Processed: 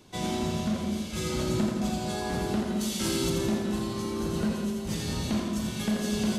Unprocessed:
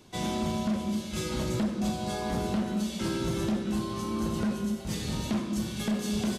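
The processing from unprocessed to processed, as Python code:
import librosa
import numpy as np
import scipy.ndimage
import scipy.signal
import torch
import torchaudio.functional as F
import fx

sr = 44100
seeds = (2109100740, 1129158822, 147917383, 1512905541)

p1 = fx.high_shelf(x, sr, hz=4400.0, db=11.0, at=(2.81, 3.3))
y = p1 + fx.echo_feedback(p1, sr, ms=84, feedback_pct=58, wet_db=-5.0, dry=0)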